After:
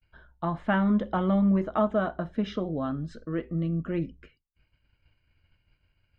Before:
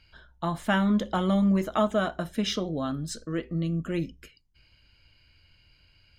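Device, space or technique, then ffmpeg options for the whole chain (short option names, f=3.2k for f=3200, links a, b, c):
hearing-loss simulation: -filter_complex "[0:a]lowpass=1.9k,agate=range=-33dB:threshold=-55dB:ratio=3:detection=peak,asettb=1/sr,asplit=3[a][b][c];[a]atrim=end=1.584[d];[b]atrim=start=1.58:end=2.8,asetpts=PTS-STARTPTS,afade=t=in:d=0.004:c=qsin,afade=t=out:st=1.216:d=0.004:c=qsin,equalizer=f=2.3k:t=o:w=0.98:g=-3.5[e];[c]atrim=start=2.796[f];[d][e]acrossfade=d=0.004:c1=hsin:c2=qsin[g];[g][f]acrossfade=d=0.004:c1=qsin:c2=hsin"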